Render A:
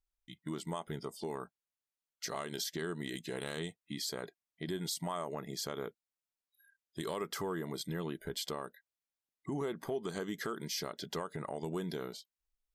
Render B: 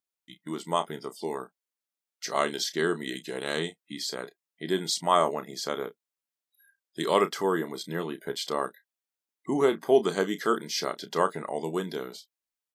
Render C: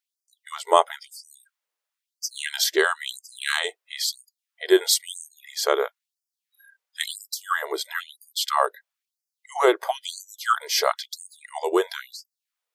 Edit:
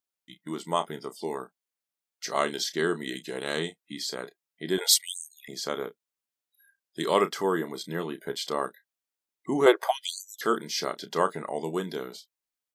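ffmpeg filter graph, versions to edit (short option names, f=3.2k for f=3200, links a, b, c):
-filter_complex "[2:a]asplit=2[a][b];[1:a]asplit=3[c][d][e];[c]atrim=end=4.782[f];[a]atrim=start=4.778:end=5.482[g];[d]atrim=start=5.478:end=9.662[h];[b]atrim=start=9.658:end=10.412[i];[e]atrim=start=10.408[j];[f][g]acrossfade=d=0.004:c1=hsin:c2=hsin[k];[k][h]acrossfade=d=0.004:c1=hsin:c2=hsin[l];[l][i]acrossfade=d=0.004:c1=hsin:c2=hsin[m];[m][j]acrossfade=d=0.004:c1=hsin:c2=hsin"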